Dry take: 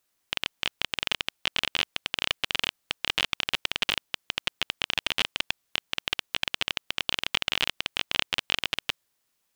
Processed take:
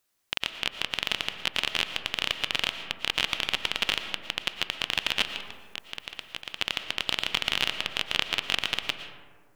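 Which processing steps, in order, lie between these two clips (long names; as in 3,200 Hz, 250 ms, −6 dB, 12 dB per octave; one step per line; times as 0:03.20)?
0:05.23–0:06.58: compressor whose output falls as the input rises −35 dBFS, ratio −0.5
comb and all-pass reverb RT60 1.7 s, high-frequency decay 0.35×, pre-delay 75 ms, DRR 8 dB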